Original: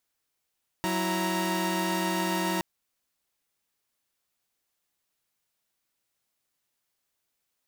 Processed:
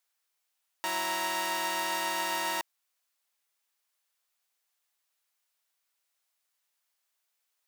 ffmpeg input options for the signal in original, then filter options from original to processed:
-f lavfi -i "aevalsrc='0.0398*((2*mod(185*t,1)-1)+(2*mod(329.63*t,1)-1)+(2*mod(932.33*t,1)-1))':d=1.77:s=44100"
-af "highpass=680"

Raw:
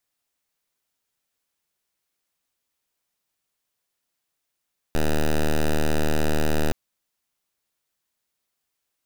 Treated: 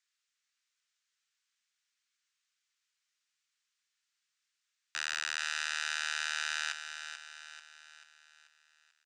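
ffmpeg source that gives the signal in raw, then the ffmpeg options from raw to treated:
-f lavfi -i "aevalsrc='0.106*(2*lt(mod(76.6*t,1),0.07)-1)':d=1.77:s=44100"
-filter_complex "[0:a]asuperpass=centerf=3300:order=8:qfactor=0.52,asplit=2[a][b];[b]aecho=0:1:438|876|1314|1752|2190|2628:0.355|0.174|0.0852|0.0417|0.0205|0.01[c];[a][c]amix=inputs=2:normalize=0"

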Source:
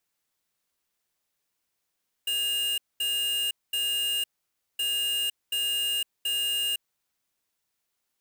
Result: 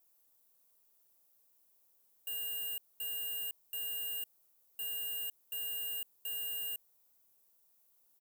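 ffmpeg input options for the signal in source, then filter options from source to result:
-f lavfi -i "aevalsrc='0.0422*(2*lt(mod(2830*t,1),0.5)-1)*clip(min(mod(mod(t,2.52),0.73),0.51-mod(mod(t,2.52),0.73))/0.005,0,1)*lt(mod(t,2.52),2.19)':d=5.04:s=44100"
-af "firequalizer=gain_entry='entry(190,0);entry(520,5);entry(1800,-7);entry(14000,13)':delay=0.05:min_phase=1,asoftclip=type=tanh:threshold=-20.5dB,alimiter=level_in=8dB:limit=-24dB:level=0:latency=1:release=23,volume=-8dB"

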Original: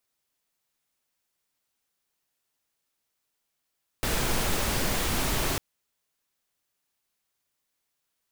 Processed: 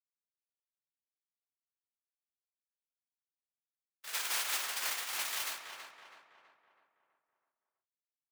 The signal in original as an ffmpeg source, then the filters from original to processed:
-f lavfi -i "anoisesrc=c=pink:a=0.243:d=1.55:r=44100:seed=1"
-filter_complex "[0:a]agate=range=-53dB:threshold=-25dB:ratio=16:detection=peak,highpass=1.3k,asplit=2[a][b];[b]adelay=326,lowpass=f=2.3k:p=1,volume=-5dB,asplit=2[c][d];[d]adelay=326,lowpass=f=2.3k:p=1,volume=0.52,asplit=2[e][f];[f]adelay=326,lowpass=f=2.3k:p=1,volume=0.52,asplit=2[g][h];[h]adelay=326,lowpass=f=2.3k:p=1,volume=0.52,asplit=2[i][j];[j]adelay=326,lowpass=f=2.3k:p=1,volume=0.52,asplit=2[k][l];[l]adelay=326,lowpass=f=2.3k:p=1,volume=0.52,asplit=2[m][n];[n]adelay=326,lowpass=f=2.3k:p=1,volume=0.52[o];[c][e][g][i][k][m][o]amix=inputs=7:normalize=0[p];[a][p]amix=inputs=2:normalize=0"

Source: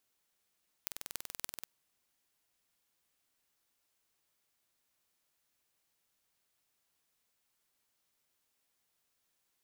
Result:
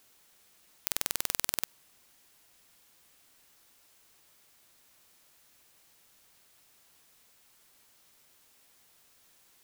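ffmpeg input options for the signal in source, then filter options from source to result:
-f lavfi -i "aevalsrc='0.376*eq(mod(n,2110),0)*(0.5+0.5*eq(mod(n,12660),0))':d=0.77:s=44100"
-af "alimiter=level_in=16.5dB:limit=-1dB:release=50:level=0:latency=1"

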